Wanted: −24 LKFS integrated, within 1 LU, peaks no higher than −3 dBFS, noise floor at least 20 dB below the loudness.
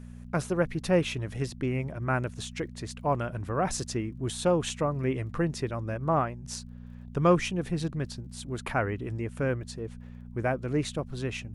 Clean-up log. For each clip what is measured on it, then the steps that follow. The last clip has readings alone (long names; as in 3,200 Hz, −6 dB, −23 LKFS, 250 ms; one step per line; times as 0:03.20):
crackle rate 14 per second; mains hum 60 Hz; hum harmonics up to 240 Hz; level of the hum −42 dBFS; integrated loudness −30.5 LKFS; sample peak −10.0 dBFS; target loudness −24.0 LKFS
→ click removal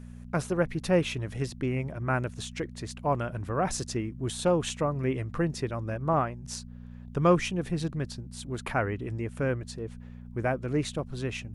crackle rate 0 per second; mains hum 60 Hz; hum harmonics up to 240 Hz; level of the hum −42 dBFS
→ hum removal 60 Hz, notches 4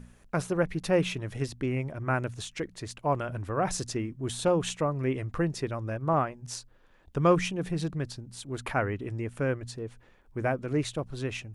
mains hum none found; integrated loudness −30.5 LKFS; sample peak −11.0 dBFS; target loudness −24.0 LKFS
→ level +6.5 dB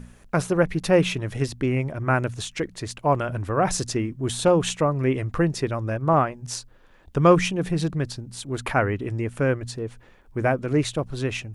integrated loudness −24.0 LKFS; sample peak −4.5 dBFS; background noise floor −53 dBFS